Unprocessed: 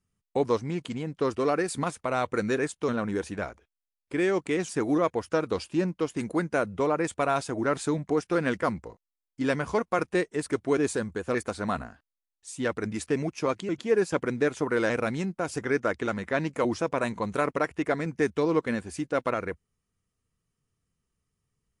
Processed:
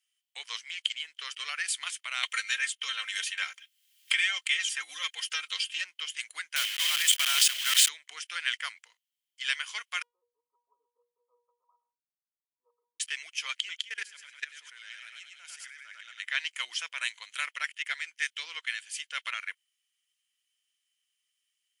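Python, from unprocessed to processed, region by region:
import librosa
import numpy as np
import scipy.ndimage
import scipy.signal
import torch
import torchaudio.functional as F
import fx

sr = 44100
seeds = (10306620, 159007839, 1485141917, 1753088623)

y = fx.chain(x, sr, fx.comb(ms=3.8, depth=0.76),
    fx.band_squash(depth_pct=100), at=(2.23, 5.84))
y = fx.chain(y, sr, fx.block_float(bits=3),
    fx.sustainer(db_per_s=26.0), at=(6.56, 7.89))
y = fx.chain(y, sr, fx.brickwall_bandpass(low_hz=200.0, high_hz=1300.0),
    fx.low_shelf(hz=340.0, db=10.0),
    fx.comb_fb(f0_hz=480.0, decay_s=0.34, harmonics='all', damping=0.0, mix_pct=100), at=(10.02, 13.0))
y = fx.chain(y, sr, fx.notch(hz=1100.0, q=11.0),
    fx.echo_feedback(ms=101, feedback_pct=43, wet_db=-4.5),
    fx.level_steps(step_db=21), at=(13.82, 16.2))
y = fx.chain(y, sr, fx.peak_eq(hz=1100.0, db=-3.0, octaves=0.36),
    fx.band_widen(depth_pct=40), at=(16.92, 18.94))
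y = scipy.signal.sosfilt(scipy.signal.cheby1(3, 1.0, 2000.0, 'highpass', fs=sr, output='sos'), y)
y = fx.peak_eq(y, sr, hz=3100.0, db=14.5, octaves=0.22)
y = y * librosa.db_to_amplitude(5.5)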